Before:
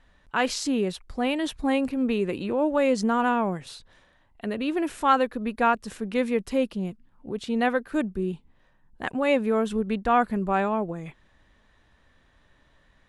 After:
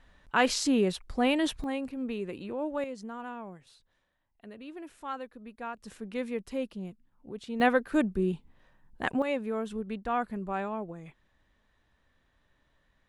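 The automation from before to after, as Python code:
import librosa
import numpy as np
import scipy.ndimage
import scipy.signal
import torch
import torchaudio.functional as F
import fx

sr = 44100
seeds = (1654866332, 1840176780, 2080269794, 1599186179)

y = fx.gain(x, sr, db=fx.steps((0.0, 0.0), (1.64, -9.5), (2.84, -17.0), (5.77, -9.0), (7.6, 0.0), (9.22, -9.0)))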